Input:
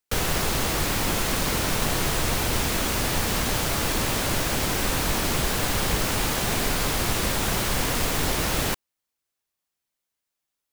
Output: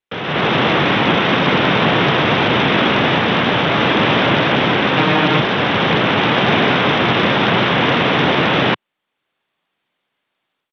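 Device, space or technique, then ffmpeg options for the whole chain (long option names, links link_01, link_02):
Bluetooth headset: -filter_complex "[0:a]asettb=1/sr,asplit=3[link_01][link_02][link_03];[link_01]atrim=end=4.974[link_04];[link_02]atrim=start=4.97:end=5.4,asetpts=PTS-STARTPTS,afade=type=in:duration=0.004:curve=qsin,afade=type=out:start_time=0.426:duration=0.004:curve=qsin,aecho=1:1:6.5:0.87,atrim=end_sample=18963[link_05];[link_03]atrim=start=5.396[link_06];[link_04][link_05]acrossfade=duration=0.004:curve1=hsin:curve2=qsin[link_07];[link_07][link_06]acrossfade=duration=0.004:curve1=qsin:curve2=hsin,highpass=frequency=130:width=0.5412,highpass=frequency=130:width=1.3066,dynaudnorm=framelen=230:gausssize=3:maxgain=15.5dB,aresample=8000,aresample=44100,volume=1.5dB" -ar 32000 -c:a sbc -b:a 64k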